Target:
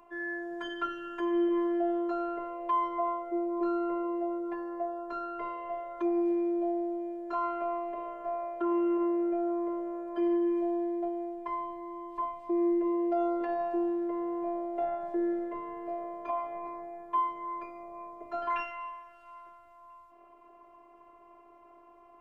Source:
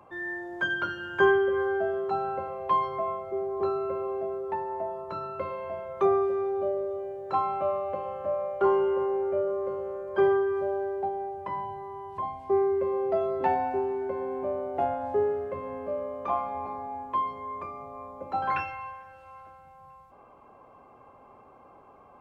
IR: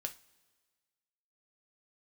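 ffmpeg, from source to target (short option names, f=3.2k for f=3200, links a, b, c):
-af "equalizer=f=500:w=3.6:g=5,alimiter=limit=-20dB:level=0:latency=1:release=42,afftfilt=real='hypot(re,im)*cos(PI*b)':imag='0':win_size=512:overlap=0.75"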